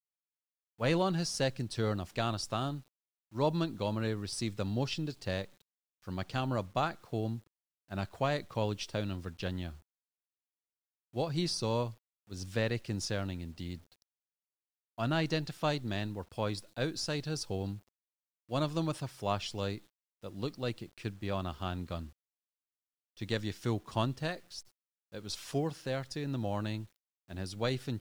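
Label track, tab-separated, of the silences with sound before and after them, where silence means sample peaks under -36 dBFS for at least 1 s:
9.700000	11.160000	silence
13.750000	14.980000	silence
22.030000	23.220000	silence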